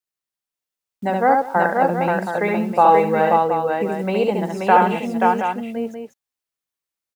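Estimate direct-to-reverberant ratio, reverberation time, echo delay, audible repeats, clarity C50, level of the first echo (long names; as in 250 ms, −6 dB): no reverb audible, no reverb audible, 70 ms, 4, no reverb audible, −3.5 dB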